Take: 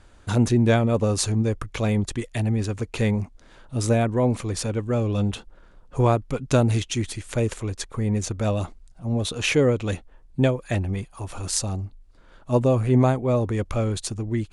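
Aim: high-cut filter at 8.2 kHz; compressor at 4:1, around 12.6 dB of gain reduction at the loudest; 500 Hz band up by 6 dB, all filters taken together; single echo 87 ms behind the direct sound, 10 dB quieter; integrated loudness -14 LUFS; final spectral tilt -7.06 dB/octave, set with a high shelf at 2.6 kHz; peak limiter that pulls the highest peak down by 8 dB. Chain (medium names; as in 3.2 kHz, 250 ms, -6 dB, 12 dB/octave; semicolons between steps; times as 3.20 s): low-pass 8.2 kHz; peaking EQ 500 Hz +7.5 dB; treble shelf 2.6 kHz -8.5 dB; compression 4:1, threshold -26 dBFS; peak limiter -21 dBFS; delay 87 ms -10 dB; trim +17 dB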